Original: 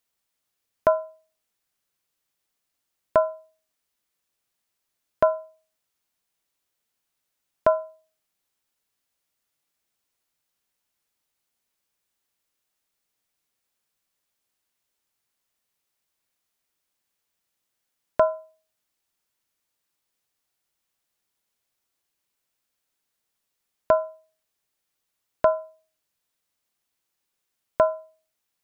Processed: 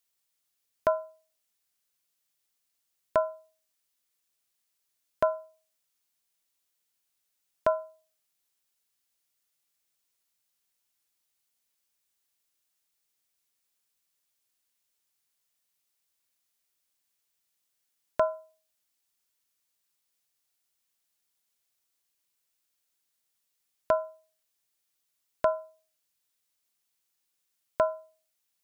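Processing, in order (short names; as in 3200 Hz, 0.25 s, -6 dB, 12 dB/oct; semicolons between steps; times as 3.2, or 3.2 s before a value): high shelf 2500 Hz +8.5 dB; gain -6.5 dB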